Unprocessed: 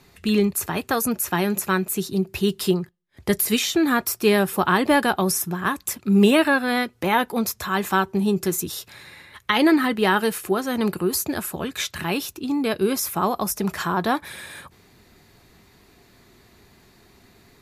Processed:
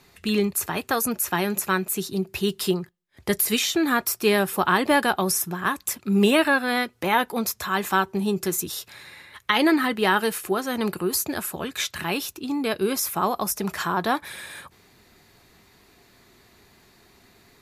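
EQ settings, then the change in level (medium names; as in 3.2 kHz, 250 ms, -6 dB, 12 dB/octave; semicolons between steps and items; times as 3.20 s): bass shelf 380 Hz -5 dB; 0.0 dB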